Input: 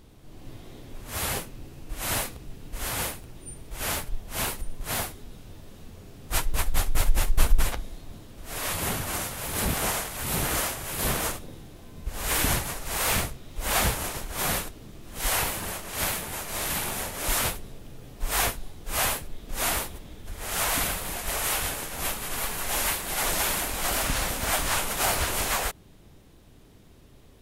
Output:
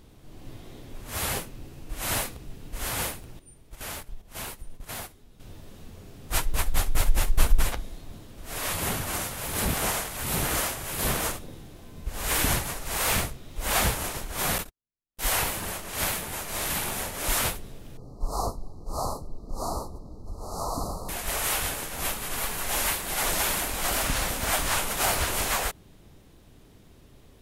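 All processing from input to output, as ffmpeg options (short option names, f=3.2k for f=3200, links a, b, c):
-filter_complex "[0:a]asettb=1/sr,asplit=3[a][b][c];[a]atrim=end=3.394[d];[b]atrim=start=3.39:end=5.4,asetpts=PTS-STARTPTS,afade=t=in:d=0.004:c=qsin,afade=t=out:st=2.006:d=0.004:c=qsin,agate=range=-11dB:threshold=-34dB:ratio=16:release=100:detection=peak,acompressor=threshold=-38dB:ratio=2:attack=3.2:release=140:knee=1:detection=peak[e];[c]atrim=start=5.396[f];[d][e]acrossfade=d=0.004:c1=hsin:c2=qsin[g];[g][f]acrossfade=d=0.004:c1=qsin:c2=hsin,asettb=1/sr,asplit=3[h][i][j];[h]atrim=end=14.584[k];[i]atrim=start=14.58:end=15.32,asetpts=PTS-STARTPTS,afade=t=in:d=0.004:c=qsin,afade=t=out:st=0.736:d=0.004:c=qsin,agate=range=-58dB:threshold=-34dB:ratio=16:release=100:detection=peak,equalizer=f=14k:w=5.3:g=6.5[l];[j]atrim=start=15.316[m];[k][l]acrossfade=d=0.004:c1=hsin:c2=qsin[n];[n][m]acrossfade=d=0.004:c1=qsin:c2=hsin,asettb=1/sr,asplit=3[o][p][q];[o]atrim=end=17.974[r];[p]atrim=start=17.97:end=21.09,asetpts=PTS-STARTPTS,afade=t=in:d=0.004:c=qsin,afade=t=out:st=3.116:d=0.004:c=qsin,asuperstop=centerf=2300:order=20:qfactor=0.8,aemphasis=mode=reproduction:type=75fm[s];[q]atrim=start=21.086[t];[r][s]acrossfade=d=0.004:c1=hsin:c2=qsin[u];[u][t]acrossfade=d=0.004:c1=qsin:c2=hsin"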